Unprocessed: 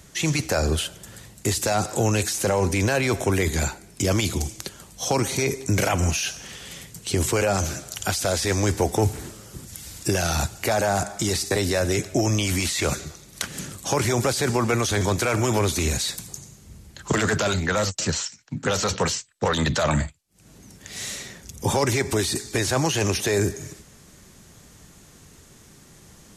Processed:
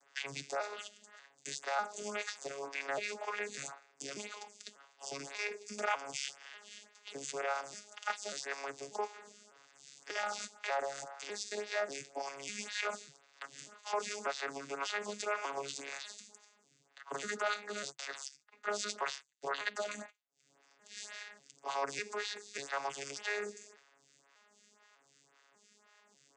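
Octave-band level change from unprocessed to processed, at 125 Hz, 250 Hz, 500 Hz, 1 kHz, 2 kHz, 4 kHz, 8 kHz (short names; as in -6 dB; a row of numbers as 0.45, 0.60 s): -37.5, -27.0, -16.0, -11.0, -11.0, -15.0, -18.0 dB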